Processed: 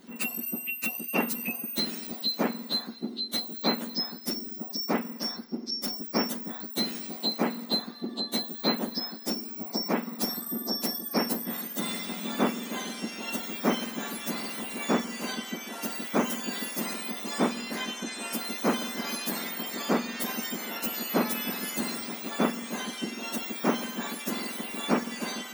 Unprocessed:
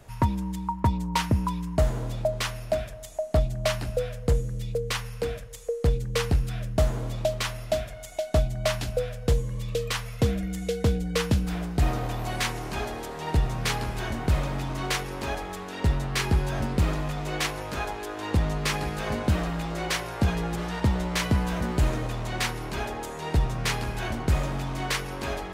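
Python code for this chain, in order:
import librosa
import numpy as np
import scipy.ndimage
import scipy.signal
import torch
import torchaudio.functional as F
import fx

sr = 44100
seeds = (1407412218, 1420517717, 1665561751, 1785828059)

y = fx.octave_mirror(x, sr, pivot_hz=1600.0)
y = fx.small_body(y, sr, hz=(230.0, 2000.0), ring_ms=90, db=10)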